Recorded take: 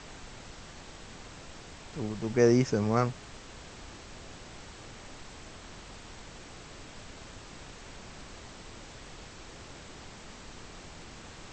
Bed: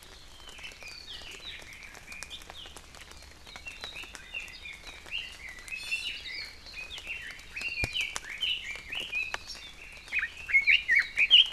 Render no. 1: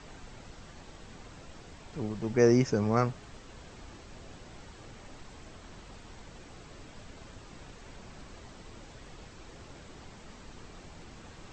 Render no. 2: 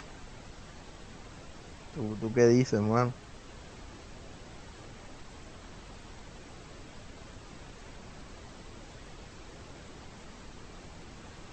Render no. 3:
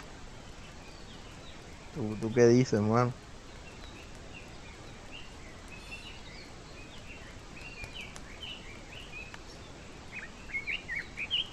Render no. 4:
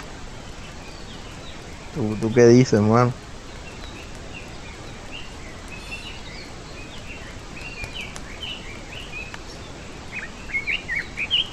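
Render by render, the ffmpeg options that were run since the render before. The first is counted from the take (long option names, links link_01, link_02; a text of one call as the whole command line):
ffmpeg -i in.wav -af "afftdn=noise_reduction=6:noise_floor=-48" out.wav
ffmpeg -i in.wav -af "acompressor=mode=upward:threshold=-43dB:ratio=2.5" out.wav
ffmpeg -i in.wav -i bed.wav -filter_complex "[1:a]volume=-13dB[link_01];[0:a][link_01]amix=inputs=2:normalize=0" out.wav
ffmpeg -i in.wav -af "volume=10.5dB,alimiter=limit=-2dB:level=0:latency=1" out.wav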